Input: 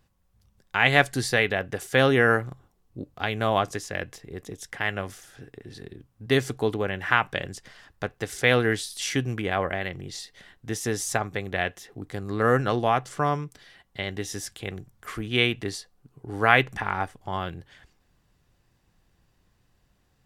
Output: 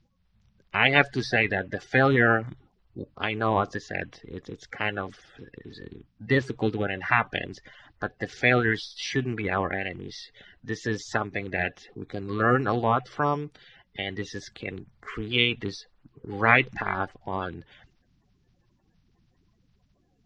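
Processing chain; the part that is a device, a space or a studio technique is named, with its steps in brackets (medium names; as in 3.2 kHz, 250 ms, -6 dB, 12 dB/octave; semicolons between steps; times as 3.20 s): clip after many re-uploads (low-pass 5 kHz 24 dB/octave; coarse spectral quantiser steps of 30 dB)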